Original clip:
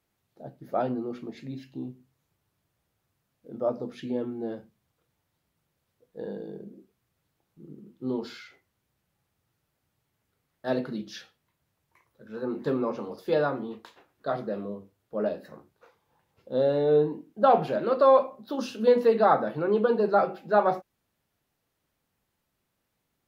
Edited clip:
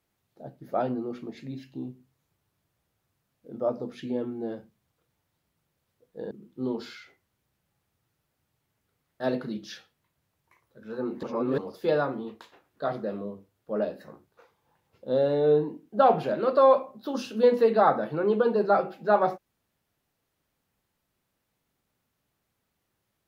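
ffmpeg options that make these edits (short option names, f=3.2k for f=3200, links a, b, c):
-filter_complex "[0:a]asplit=4[a][b][c][d];[a]atrim=end=6.312[e];[b]atrim=start=7.748:end=12.672[f];[c]atrim=start=12.668:end=13.022,asetpts=PTS-STARTPTS,areverse[g];[d]atrim=start=13.018[h];[e][f]acrossfade=d=0.004:c1=hsin:c2=hsin[i];[i][g]acrossfade=d=0.004:c1=hsin:c2=hsin[j];[j][h]acrossfade=d=0.004:c1=hsin:c2=hsin"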